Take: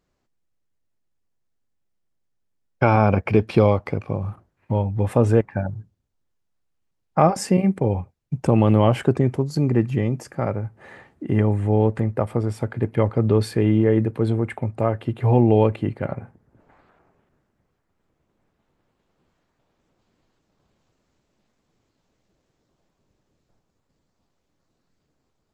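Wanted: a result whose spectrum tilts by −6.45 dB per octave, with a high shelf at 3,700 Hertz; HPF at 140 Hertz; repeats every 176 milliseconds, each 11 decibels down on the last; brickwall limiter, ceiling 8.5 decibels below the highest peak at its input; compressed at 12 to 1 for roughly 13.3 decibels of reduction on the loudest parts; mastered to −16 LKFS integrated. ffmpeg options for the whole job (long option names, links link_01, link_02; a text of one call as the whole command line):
ffmpeg -i in.wav -af "highpass=140,highshelf=frequency=3700:gain=6.5,acompressor=threshold=-25dB:ratio=12,alimiter=limit=-20.5dB:level=0:latency=1,aecho=1:1:176|352|528:0.282|0.0789|0.0221,volume=17dB" out.wav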